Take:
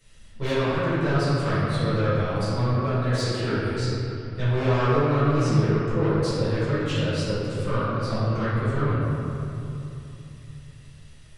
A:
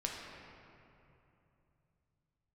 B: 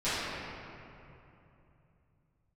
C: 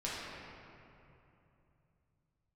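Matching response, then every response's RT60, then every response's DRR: B; 2.9, 2.9, 2.9 seconds; −2.0, −17.0, −8.5 decibels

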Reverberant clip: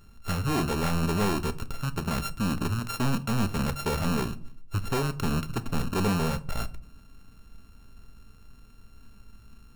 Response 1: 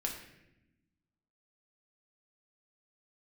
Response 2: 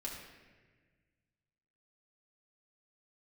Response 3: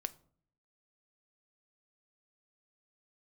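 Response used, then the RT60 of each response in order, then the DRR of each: 3; 0.90, 1.4, 0.55 seconds; −0.5, −3.5, 12.0 decibels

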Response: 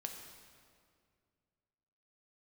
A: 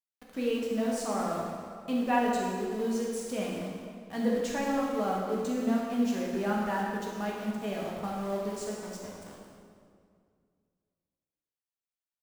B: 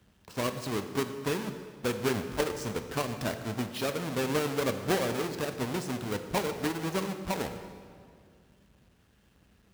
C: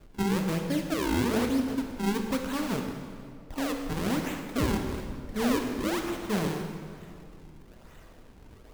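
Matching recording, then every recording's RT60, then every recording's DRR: C; 2.2, 2.2, 2.2 seconds; −4.0, 7.5, 3.0 decibels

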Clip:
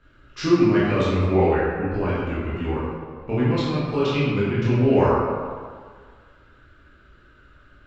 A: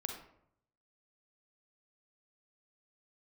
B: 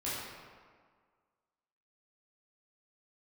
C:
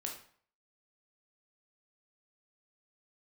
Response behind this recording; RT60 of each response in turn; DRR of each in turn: B; 0.70, 1.7, 0.50 seconds; 3.0, −10.0, 0.0 decibels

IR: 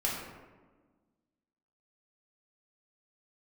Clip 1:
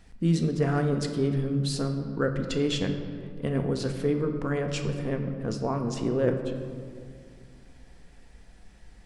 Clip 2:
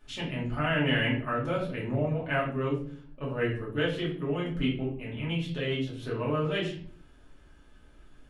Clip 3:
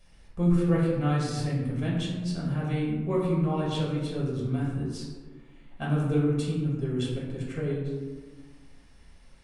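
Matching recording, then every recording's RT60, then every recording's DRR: 3; 2.2, 0.50, 1.4 seconds; 4.5, −6.5, −5.0 decibels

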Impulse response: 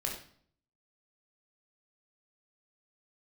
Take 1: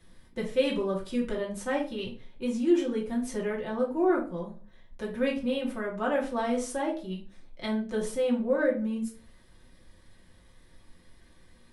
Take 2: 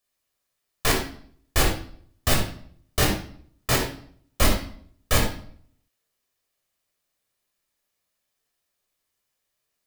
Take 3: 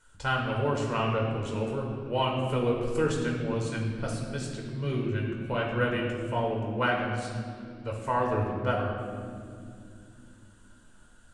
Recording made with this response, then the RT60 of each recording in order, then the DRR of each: 2; 0.40 s, 0.55 s, non-exponential decay; −3.5, −0.5, −2.0 decibels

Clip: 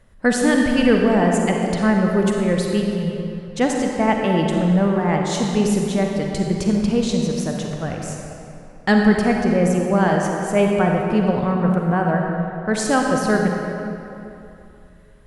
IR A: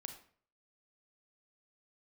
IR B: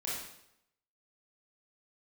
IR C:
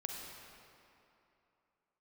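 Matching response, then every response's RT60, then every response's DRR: C; 0.50, 0.80, 2.9 seconds; 5.5, −7.0, 0.5 decibels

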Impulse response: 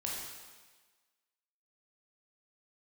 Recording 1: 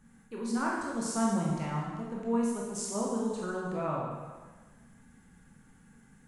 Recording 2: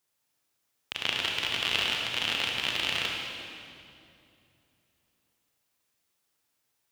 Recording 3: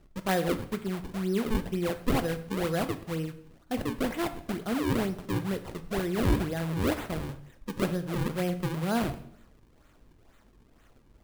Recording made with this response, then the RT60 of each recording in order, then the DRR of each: 1; 1.4, 2.6, 0.65 seconds; −4.0, −1.5, 9.0 decibels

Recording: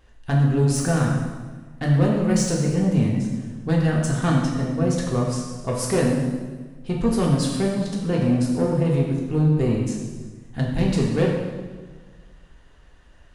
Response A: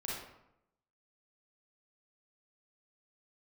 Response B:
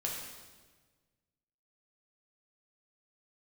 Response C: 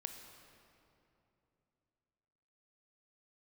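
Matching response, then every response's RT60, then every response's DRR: B; 0.80, 1.4, 2.9 seconds; −5.5, −3.0, 5.0 decibels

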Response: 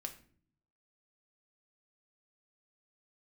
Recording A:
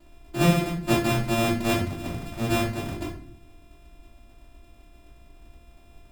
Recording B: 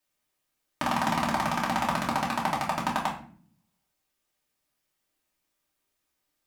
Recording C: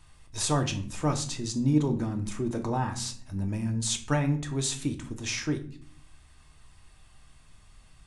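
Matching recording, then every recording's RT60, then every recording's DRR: C; 0.50, 0.50, 0.50 seconds; −12.5, −5.5, 4.0 decibels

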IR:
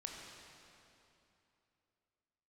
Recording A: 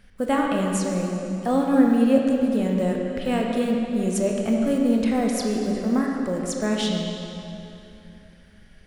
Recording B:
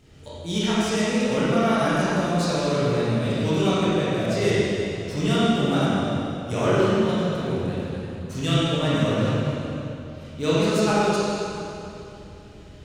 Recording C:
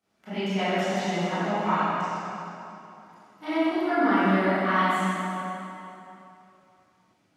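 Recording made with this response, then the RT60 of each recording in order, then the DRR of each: A; 2.9, 2.9, 2.9 seconds; −0.5, −10.0, −17.5 decibels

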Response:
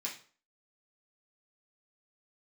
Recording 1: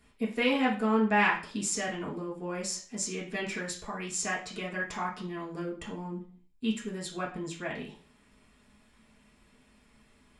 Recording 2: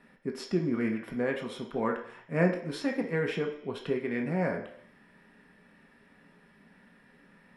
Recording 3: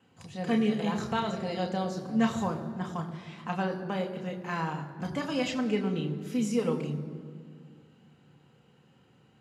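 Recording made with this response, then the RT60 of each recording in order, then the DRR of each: 1; 0.40 s, non-exponential decay, 2.0 s; −4.5, 1.0, 2.0 decibels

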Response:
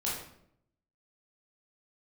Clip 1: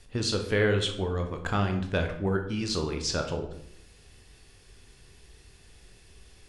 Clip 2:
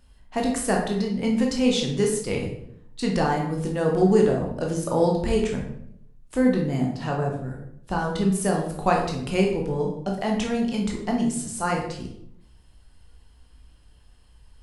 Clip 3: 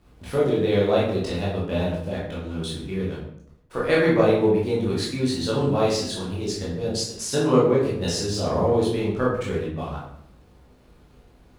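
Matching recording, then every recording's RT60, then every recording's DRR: 3; 0.70, 0.70, 0.70 seconds; 4.0, −0.5, −6.5 decibels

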